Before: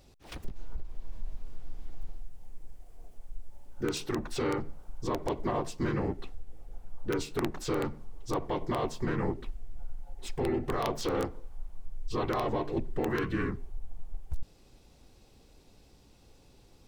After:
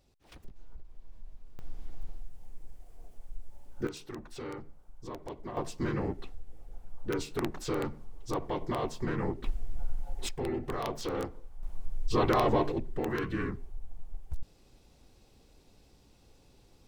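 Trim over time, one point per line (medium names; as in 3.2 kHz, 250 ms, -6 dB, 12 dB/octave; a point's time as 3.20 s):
-10 dB
from 1.59 s -0.5 dB
from 3.87 s -10 dB
from 5.57 s -1.5 dB
from 9.44 s +6.5 dB
from 10.29 s -3.5 dB
from 11.63 s +5 dB
from 12.72 s -2 dB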